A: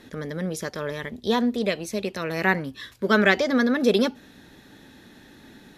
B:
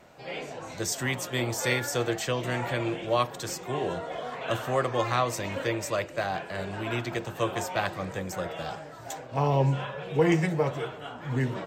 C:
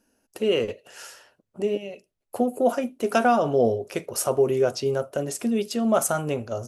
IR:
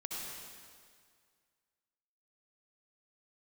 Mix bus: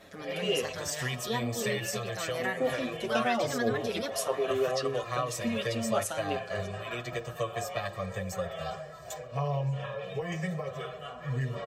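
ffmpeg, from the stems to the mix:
-filter_complex "[0:a]lowshelf=f=450:g=-9.5,volume=-1dB[a];[1:a]aecho=1:1:1.7:0.91,volume=-1.5dB[b];[2:a]equalizer=f=3.3k:t=o:w=1.4:g=12,acrossover=split=1500[c][d];[c]aeval=exprs='val(0)*(1-0.5/2+0.5/2*cos(2*PI*3.5*n/s))':c=same[e];[d]aeval=exprs='val(0)*(1-0.5/2-0.5/2*cos(2*PI*3.5*n/s))':c=same[f];[e][f]amix=inputs=2:normalize=0,volume=-5.5dB[g];[a][b]amix=inputs=2:normalize=0,acompressor=threshold=-26dB:ratio=6,volume=0dB[h];[g][h]amix=inputs=2:normalize=0,asplit=2[i][j];[j]adelay=7,afreqshift=-0.49[k];[i][k]amix=inputs=2:normalize=1"

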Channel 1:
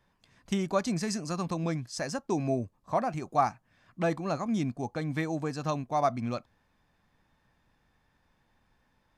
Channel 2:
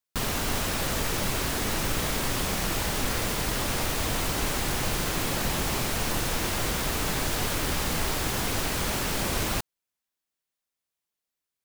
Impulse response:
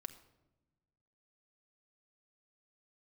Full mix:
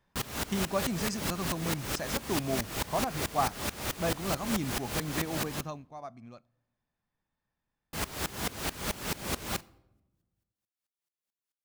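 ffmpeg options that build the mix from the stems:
-filter_complex "[0:a]volume=-5dB,afade=t=out:st=5.4:d=0.5:silence=0.223872,asplit=2[a][b];[b]volume=-10dB[c];[1:a]highpass=52,aeval=exprs='val(0)*pow(10,-23*if(lt(mod(-4.6*n/s,1),2*abs(-4.6)/1000),1-mod(-4.6*n/s,1)/(2*abs(-4.6)/1000),(mod(-4.6*n/s,1)-2*abs(-4.6)/1000)/(1-2*abs(-4.6)/1000))/20)':c=same,volume=-2.5dB,asplit=3[d][e][f];[d]atrim=end=5.61,asetpts=PTS-STARTPTS,afade=t=out:st=5.606:d=0.004:c=hsin[g];[e]atrim=start=5.61:end=7.93,asetpts=PTS-STARTPTS,volume=0[h];[f]atrim=start=7.93,asetpts=PTS-STARTPTS,afade=t=in:d=0.004:c=hsin[i];[g][h][i]concat=n=3:v=0:a=1,asplit=2[j][k];[k]volume=-3dB[l];[2:a]atrim=start_sample=2205[m];[c][l]amix=inputs=2:normalize=0[n];[n][m]afir=irnorm=-1:irlink=0[o];[a][j][o]amix=inputs=3:normalize=0"

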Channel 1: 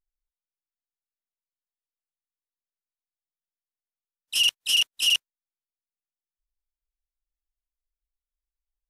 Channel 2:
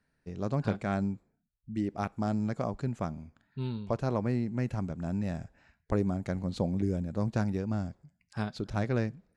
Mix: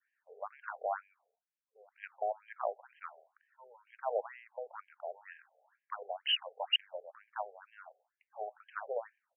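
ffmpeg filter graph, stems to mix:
-filter_complex "[0:a]adelay=1600,volume=-4dB[a];[1:a]volume=0dB[b];[a][b]amix=inputs=2:normalize=0,highpass=350,adynamicequalizer=threshold=0.00447:dfrequency=810:dqfactor=1.1:tfrequency=810:tqfactor=1.1:attack=5:release=100:ratio=0.375:range=2:mode=boostabove:tftype=bell,afftfilt=real='re*between(b*sr/1024,550*pow(2300/550,0.5+0.5*sin(2*PI*2.1*pts/sr))/1.41,550*pow(2300/550,0.5+0.5*sin(2*PI*2.1*pts/sr))*1.41)':imag='im*between(b*sr/1024,550*pow(2300/550,0.5+0.5*sin(2*PI*2.1*pts/sr))/1.41,550*pow(2300/550,0.5+0.5*sin(2*PI*2.1*pts/sr))*1.41)':win_size=1024:overlap=0.75"

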